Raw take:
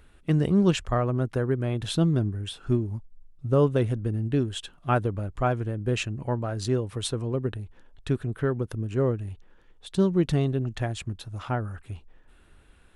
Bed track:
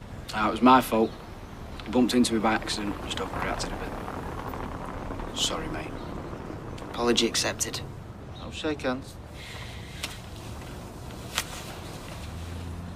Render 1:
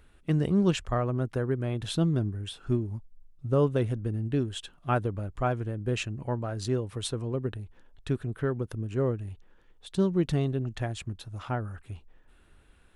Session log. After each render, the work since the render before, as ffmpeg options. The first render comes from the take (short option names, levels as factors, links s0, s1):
-af "volume=0.708"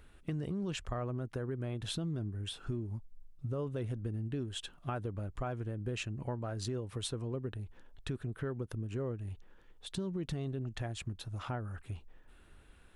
-af "alimiter=limit=0.0891:level=0:latency=1:release=18,acompressor=threshold=0.0158:ratio=3"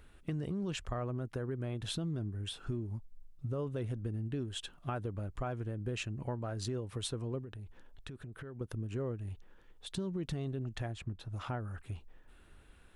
-filter_complex "[0:a]asettb=1/sr,asplit=3[s0][s1][s2];[s0]atrim=end=7.434[s3];[s1]atrim=start=7.43:end=8.61,asetpts=PTS-STARTPTS,afade=t=in:d=0.004:c=qsin,afade=t=out:st=1.176:d=0.004:c=qsin,acompressor=threshold=0.00794:ratio=6:attack=3.2:release=140:knee=1:detection=peak[s4];[s2]atrim=start=8.606[s5];[s3][s4]acrossfade=d=0.004:c1=hsin:c2=qsin[s6];[s6][s5]acrossfade=d=0.004:c1=qsin:c2=hsin,asplit=3[s7][s8][s9];[s7]afade=t=out:st=10.9:d=0.02[s10];[s8]highshelf=f=3700:g=-11.5,afade=t=in:st=10.9:d=0.02,afade=t=out:st=11.32:d=0.02[s11];[s9]afade=t=in:st=11.32:d=0.02[s12];[s10][s11][s12]amix=inputs=3:normalize=0"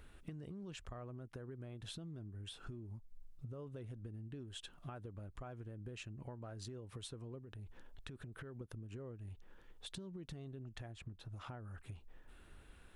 -af "acompressor=threshold=0.00501:ratio=6"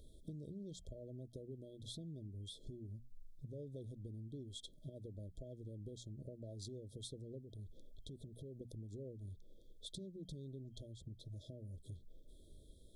-af "bandreject=f=60:t=h:w=6,bandreject=f=120:t=h:w=6,bandreject=f=180:t=h:w=6,bandreject=f=240:t=h:w=6,afftfilt=real='re*(1-between(b*sr/4096,660,3200))':imag='im*(1-between(b*sr/4096,660,3200))':win_size=4096:overlap=0.75"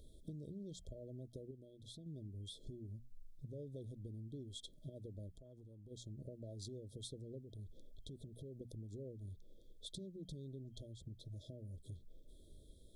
-filter_complex "[0:a]asplit=3[s0][s1][s2];[s0]afade=t=out:st=5.31:d=0.02[s3];[s1]acompressor=threshold=0.002:ratio=6:attack=3.2:release=140:knee=1:detection=peak,afade=t=in:st=5.31:d=0.02,afade=t=out:st=5.9:d=0.02[s4];[s2]afade=t=in:st=5.9:d=0.02[s5];[s3][s4][s5]amix=inputs=3:normalize=0,asplit=3[s6][s7][s8];[s6]atrim=end=1.512[s9];[s7]atrim=start=1.508:end=2.062,asetpts=PTS-STARTPTS,volume=0.531[s10];[s8]atrim=start=2.058[s11];[s9][s10]acrossfade=d=0.004:c1=hsin:c2=hsin[s12];[s12][s11]acrossfade=d=0.004:c1=hsin:c2=hsin"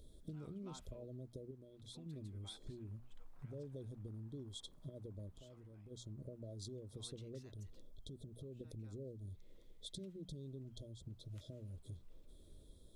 -filter_complex "[1:a]volume=0.00891[s0];[0:a][s0]amix=inputs=2:normalize=0"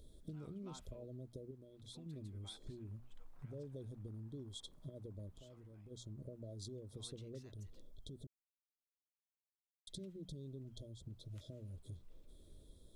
-filter_complex "[0:a]asplit=3[s0][s1][s2];[s0]atrim=end=8.27,asetpts=PTS-STARTPTS,afade=t=out:st=8.266:d=0.004:c=hsin[s3];[s1]atrim=start=8.27:end=9.87,asetpts=PTS-STARTPTS,volume=0[s4];[s2]atrim=start=9.87,asetpts=PTS-STARTPTS,afade=t=in:d=0.004:c=hsin[s5];[s3][s4][s5]concat=n=3:v=0:a=1"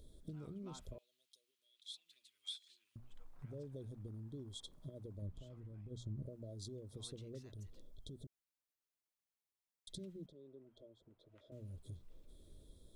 -filter_complex "[0:a]asettb=1/sr,asplit=3[s0][s1][s2];[s0]atrim=end=0.984[s3];[s1]atrim=start=0.98:end=2.96,asetpts=PTS-STARTPTS,afade=t=in:d=0.004:c=qsin,afade=t=out:st=1.976:d=0.004:c=qsin,highpass=f=3000:t=q:w=2.4[s4];[s2]atrim=start=2.956[s5];[s3][s4]acrossfade=d=0.004:c1=hsin:c2=qsin[s6];[s6][s5]acrossfade=d=0.004:c1=qsin:c2=hsin,asettb=1/sr,asplit=3[s7][s8][s9];[s7]atrim=end=5.224[s10];[s8]atrim=start=5.22:end=6.26,asetpts=PTS-STARTPTS,afade=t=in:d=0.004:c=qsin,afade=t=out:st=1.036:d=0.004:c=qsin,bass=f=250:g=7,treble=f=4000:g=-5[s11];[s9]atrim=start=6.256[s12];[s10][s11]acrossfade=d=0.004:c1=hsin:c2=qsin[s13];[s13][s12]acrossfade=d=0.004:c1=qsin:c2=hsin,asettb=1/sr,asplit=3[s14][s15][s16];[s14]atrim=end=10.264[s17];[s15]atrim=start=10.26:end=11.52,asetpts=PTS-STARTPTS,afade=t=in:d=0.004:c=qsin,afade=t=out:st=1.256:d=0.004:c=qsin,acrossover=split=320 2600:gain=0.0794 1 0.0708[s18][s19][s20];[s18][s19][s20]amix=inputs=3:normalize=0[s21];[s16]atrim=start=11.516[s22];[s17][s21]acrossfade=d=0.004:c1=hsin:c2=qsin[s23];[s23][s22]acrossfade=d=0.004:c1=qsin:c2=hsin"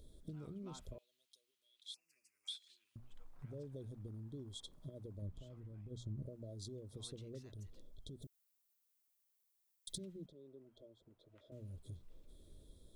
-filter_complex "[0:a]asettb=1/sr,asplit=3[s0][s1][s2];[s0]atrim=end=1.944[s3];[s1]atrim=start=1.94:end=2.48,asetpts=PTS-STARTPTS,afade=t=in:d=0.004:c=qsin,afade=t=out:st=0.536:d=0.004:c=qsin,asuperstop=centerf=3600:order=8:qfactor=1.6[s4];[s2]atrim=start=2.476[s5];[s3][s4]acrossfade=d=0.004:c1=hsin:c2=qsin[s6];[s6][s5]acrossfade=d=0.004:c1=qsin:c2=hsin,asettb=1/sr,asplit=3[s7][s8][s9];[s7]atrim=end=8.224[s10];[s8]atrim=start=8.22:end=9.98,asetpts=PTS-STARTPTS,afade=t=in:d=0.004:c=qsin,afade=t=out:st=1.756:d=0.004:c=qsin,aemphasis=mode=production:type=50kf[s11];[s9]atrim=start=9.976[s12];[s10][s11]acrossfade=d=0.004:c1=hsin:c2=qsin[s13];[s13][s12]acrossfade=d=0.004:c1=qsin:c2=hsin"